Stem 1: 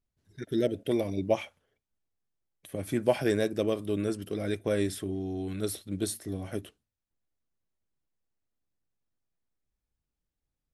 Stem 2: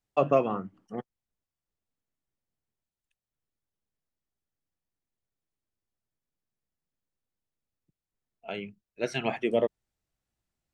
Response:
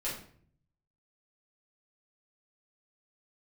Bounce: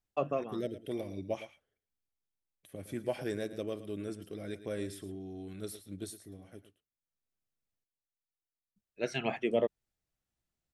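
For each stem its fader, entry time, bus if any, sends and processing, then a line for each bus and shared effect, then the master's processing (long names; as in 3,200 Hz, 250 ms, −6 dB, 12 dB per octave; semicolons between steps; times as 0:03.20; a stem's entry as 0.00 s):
0:05.92 −9.5 dB → 0:06.68 −18 dB, 0.00 s, no send, echo send −13.5 dB, no processing
−3.5 dB, 0.00 s, muted 0:07.84–0:08.76, no send, no echo send, automatic ducking −16 dB, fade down 0.80 s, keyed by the first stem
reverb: not used
echo: single-tap delay 111 ms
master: parametric band 930 Hz −2.5 dB 0.35 octaves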